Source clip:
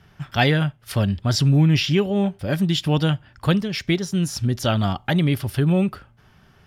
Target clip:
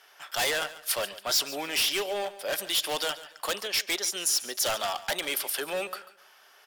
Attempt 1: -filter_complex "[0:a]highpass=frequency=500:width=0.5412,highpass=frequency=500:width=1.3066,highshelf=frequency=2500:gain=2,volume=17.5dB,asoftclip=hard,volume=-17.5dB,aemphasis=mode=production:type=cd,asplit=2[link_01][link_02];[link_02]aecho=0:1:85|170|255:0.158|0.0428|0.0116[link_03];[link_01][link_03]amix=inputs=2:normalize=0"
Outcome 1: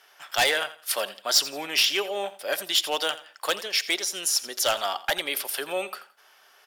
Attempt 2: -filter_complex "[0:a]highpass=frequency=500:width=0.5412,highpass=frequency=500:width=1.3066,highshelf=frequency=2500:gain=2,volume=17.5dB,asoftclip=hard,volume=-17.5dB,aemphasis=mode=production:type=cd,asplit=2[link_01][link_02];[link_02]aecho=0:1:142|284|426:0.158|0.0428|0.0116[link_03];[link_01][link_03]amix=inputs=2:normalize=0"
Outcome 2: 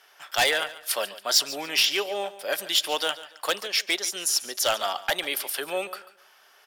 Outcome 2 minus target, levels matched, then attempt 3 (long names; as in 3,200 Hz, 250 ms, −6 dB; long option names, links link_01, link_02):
gain into a clipping stage and back: distortion −7 dB
-filter_complex "[0:a]highpass=frequency=500:width=0.5412,highpass=frequency=500:width=1.3066,highshelf=frequency=2500:gain=2,volume=26dB,asoftclip=hard,volume=-26dB,aemphasis=mode=production:type=cd,asplit=2[link_01][link_02];[link_02]aecho=0:1:142|284|426:0.158|0.0428|0.0116[link_03];[link_01][link_03]amix=inputs=2:normalize=0"